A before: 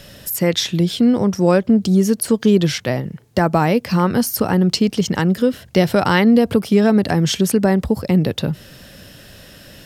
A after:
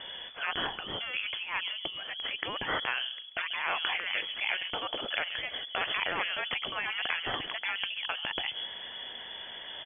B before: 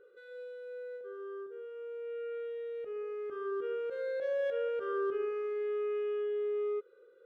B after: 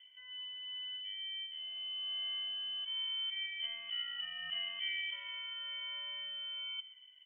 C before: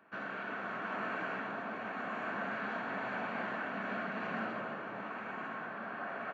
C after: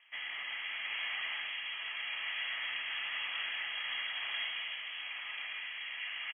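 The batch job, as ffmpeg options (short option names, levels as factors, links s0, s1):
-filter_complex "[0:a]asplit=2[s0][s1];[s1]adelay=136,lowpass=f=2300:p=1,volume=0.112,asplit=2[s2][s3];[s3]adelay=136,lowpass=f=2300:p=1,volume=0.22[s4];[s0][s2][s4]amix=inputs=3:normalize=0,afftfilt=real='re*lt(hypot(re,im),0.2)':imag='im*lt(hypot(re,im),0.2)':win_size=1024:overlap=0.75,lowpass=f=3000:t=q:w=0.5098,lowpass=f=3000:t=q:w=0.6013,lowpass=f=3000:t=q:w=0.9,lowpass=f=3000:t=q:w=2.563,afreqshift=-3500"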